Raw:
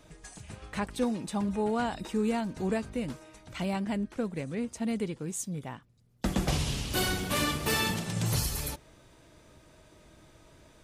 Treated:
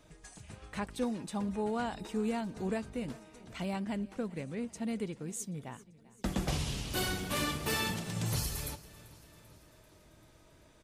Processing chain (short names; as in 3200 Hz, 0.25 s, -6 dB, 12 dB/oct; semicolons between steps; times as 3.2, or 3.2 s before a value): feedback echo 0.39 s, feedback 59%, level -20.5 dB; gain -4.5 dB